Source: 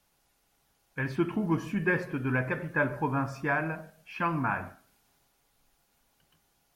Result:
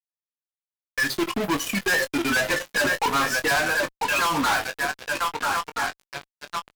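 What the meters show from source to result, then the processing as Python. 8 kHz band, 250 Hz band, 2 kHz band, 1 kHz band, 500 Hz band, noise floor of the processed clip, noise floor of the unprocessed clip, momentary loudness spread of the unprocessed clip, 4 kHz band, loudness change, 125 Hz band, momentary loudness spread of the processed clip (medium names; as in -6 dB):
no reading, +2.5 dB, +10.0 dB, +9.5 dB, +6.0 dB, under -85 dBFS, -72 dBFS, 8 LU, +25.0 dB, +6.5 dB, -5.5 dB, 9 LU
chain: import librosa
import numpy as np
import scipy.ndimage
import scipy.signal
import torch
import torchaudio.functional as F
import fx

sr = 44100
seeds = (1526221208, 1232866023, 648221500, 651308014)

y = fx.bin_expand(x, sr, power=2.0)
y = scipy.signal.sosfilt(scipy.signal.butter(2, 560.0, 'highpass', fs=sr, output='sos'), y)
y = fx.echo_swing(y, sr, ms=1321, ratio=3, feedback_pct=41, wet_db=-15)
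y = fx.fuzz(y, sr, gain_db=56.0, gate_db=-54.0)
y = fx.doubler(y, sr, ms=21.0, db=-9)
y = y * librosa.db_to_amplitude(-7.5)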